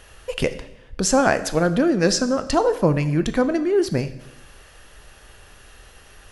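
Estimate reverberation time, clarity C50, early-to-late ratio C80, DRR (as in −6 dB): 0.95 s, 13.5 dB, 15.5 dB, 11.0 dB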